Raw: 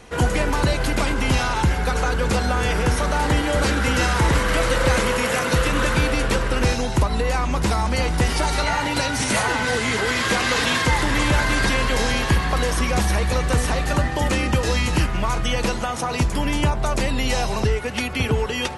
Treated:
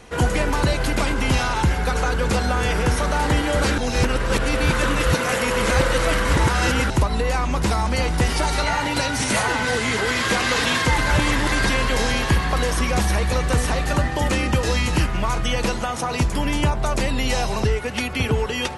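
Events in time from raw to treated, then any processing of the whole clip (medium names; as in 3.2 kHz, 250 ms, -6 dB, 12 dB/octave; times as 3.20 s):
3.78–6.90 s: reverse
10.98–11.52 s: reverse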